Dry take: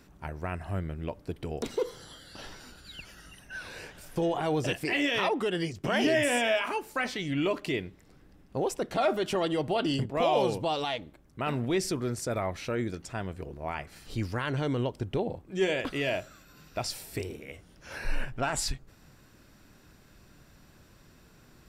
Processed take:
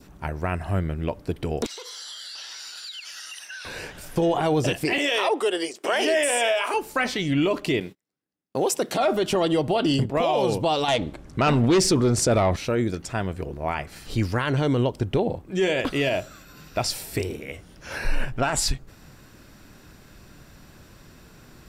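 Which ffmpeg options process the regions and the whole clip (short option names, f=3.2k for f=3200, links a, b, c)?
-filter_complex "[0:a]asettb=1/sr,asplit=3[a][b][c];[a]atrim=end=1.664[d];[b]atrim=start=1.66:end=3.65,asetpts=PTS-STARTPTS,afade=t=in:d=0.004:c=qsin,afade=t=out:st=1.986:d=0.004:c=qsin,highpass=910,equalizer=f=5k:w=0.56:g=14,acompressor=threshold=-42dB:ratio=12:attack=3.2:release=140:knee=1:detection=peak[e];[c]atrim=start=3.646[f];[d][e]acrossfade=d=0.004:c1=hsin:c2=qsin[g];[g][f]acrossfade=d=0.004:c1=qsin:c2=hsin,asettb=1/sr,asplit=3[h][i][j];[h]atrim=end=4.984[k];[i]atrim=start=4.98:end=6.74,asetpts=PTS-STARTPTS,afade=t=in:d=0.004:c=qsin,afade=t=out:st=1.756:d=0.004:c=qsin,highpass=f=360:w=0.5412,highpass=f=360:w=1.3066,equalizer=f=8.8k:w=3.3:g=8[l];[j]atrim=start=6.736[m];[k][l]acrossfade=d=0.004:c1=hsin:c2=qsin[n];[n][m]acrossfade=d=0.004:c1=qsin:c2=hsin,asettb=1/sr,asplit=3[o][p][q];[o]atrim=end=7.804[r];[p]atrim=start=7.8:end=8.98,asetpts=PTS-STARTPTS,afade=t=in:d=0.004:c=qsin,afade=t=out:st=1.176:d=0.004:c=qsin,agate=range=-37dB:threshold=-50dB:ratio=16:release=100:detection=peak,highpass=170,highshelf=f=3.6k:g=9[s];[q]atrim=start=8.976[t];[r][s]acrossfade=d=0.004:c1=hsin:c2=qsin[u];[u][t]acrossfade=d=0.004:c1=qsin:c2=hsin,asettb=1/sr,asplit=3[v][w][x];[v]atrim=end=10.884[y];[w]atrim=start=10.88:end=12.56,asetpts=PTS-STARTPTS,afade=t=in:d=0.004:c=qsin,afade=t=out:st=1.676:d=0.004:c=qsin,lowpass=9.1k,aeval=exprs='0.133*sin(PI/2*1.78*val(0)/0.133)':c=same[z];[x]atrim=start=12.556[aa];[y][z]acrossfade=d=0.004:c1=hsin:c2=qsin[ab];[ab][aa]acrossfade=d=0.004:c1=qsin:c2=hsin,adynamicequalizer=threshold=0.00631:dfrequency=1800:dqfactor=1.3:tfrequency=1800:tqfactor=1.3:attack=5:release=100:ratio=0.375:range=2.5:mode=cutabove:tftype=bell,alimiter=limit=-21.5dB:level=0:latency=1:release=59,volume=8dB"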